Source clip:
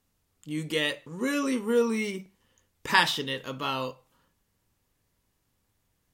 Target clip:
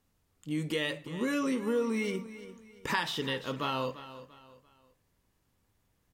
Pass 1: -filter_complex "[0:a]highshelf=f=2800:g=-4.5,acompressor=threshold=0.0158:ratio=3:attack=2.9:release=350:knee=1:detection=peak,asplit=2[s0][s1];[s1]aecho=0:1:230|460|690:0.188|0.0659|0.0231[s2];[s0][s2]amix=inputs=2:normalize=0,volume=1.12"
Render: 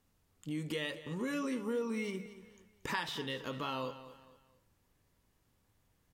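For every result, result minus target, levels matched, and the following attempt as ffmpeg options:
echo 113 ms early; compression: peak gain reduction +5.5 dB
-filter_complex "[0:a]highshelf=f=2800:g=-4.5,acompressor=threshold=0.0158:ratio=3:attack=2.9:release=350:knee=1:detection=peak,asplit=2[s0][s1];[s1]aecho=0:1:343|686|1029:0.188|0.0659|0.0231[s2];[s0][s2]amix=inputs=2:normalize=0,volume=1.12"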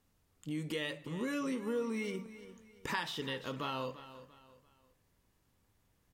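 compression: peak gain reduction +5.5 dB
-filter_complex "[0:a]highshelf=f=2800:g=-4.5,acompressor=threshold=0.0422:ratio=3:attack=2.9:release=350:knee=1:detection=peak,asplit=2[s0][s1];[s1]aecho=0:1:343|686|1029:0.188|0.0659|0.0231[s2];[s0][s2]amix=inputs=2:normalize=0,volume=1.12"

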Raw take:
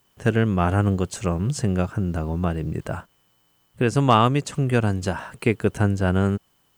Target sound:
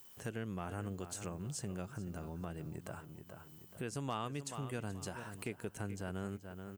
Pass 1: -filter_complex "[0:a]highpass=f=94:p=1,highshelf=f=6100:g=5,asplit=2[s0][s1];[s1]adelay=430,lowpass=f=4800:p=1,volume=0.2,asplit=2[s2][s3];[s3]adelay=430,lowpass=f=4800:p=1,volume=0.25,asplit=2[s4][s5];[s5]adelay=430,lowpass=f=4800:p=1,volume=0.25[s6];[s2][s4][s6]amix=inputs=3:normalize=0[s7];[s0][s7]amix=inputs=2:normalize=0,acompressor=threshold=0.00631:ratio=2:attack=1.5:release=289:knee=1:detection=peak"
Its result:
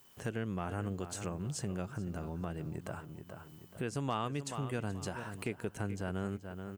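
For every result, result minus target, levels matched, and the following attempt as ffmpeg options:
compression: peak gain reduction -4.5 dB; 8 kHz band -3.0 dB
-filter_complex "[0:a]highpass=f=94:p=1,highshelf=f=6100:g=5,asplit=2[s0][s1];[s1]adelay=430,lowpass=f=4800:p=1,volume=0.2,asplit=2[s2][s3];[s3]adelay=430,lowpass=f=4800:p=1,volume=0.25,asplit=2[s4][s5];[s5]adelay=430,lowpass=f=4800:p=1,volume=0.25[s6];[s2][s4][s6]amix=inputs=3:normalize=0[s7];[s0][s7]amix=inputs=2:normalize=0,acompressor=threshold=0.00237:ratio=2:attack=1.5:release=289:knee=1:detection=peak"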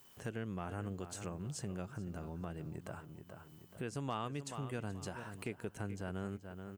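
8 kHz band -3.0 dB
-filter_complex "[0:a]highpass=f=94:p=1,highshelf=f=6100:g=12.5,asplit=2[s0][s1];[s1]adelay=430,lowpass=f=4800:p=1,volume=0.2,asplit=2[s2][s3];[s3]adelay=430,lowpass=f=4800:p=1,volume=0.25,asplit=2[s4][s5];[s5]adelay=430,lowpass=f=4800:p=1,volume=0.25[s6];[s2][s4][s6]amix=inputs=3:normalize=0[s7];[s0][s7]amix=inputs=2:normalize=0,acompressor=threshold=0.00237:ratio=2:attack=1.5:release=289:knee=1:detection=peak"

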